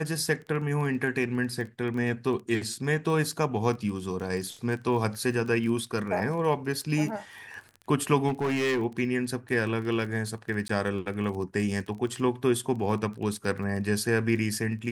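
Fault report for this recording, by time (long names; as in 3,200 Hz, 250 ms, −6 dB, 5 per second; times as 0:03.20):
surface crackle 20 per second −35 dBFS
0:08.28–0:08.83: clipping −23.5 dBFS
0:10.68–0:10.69: drop-out 14 ms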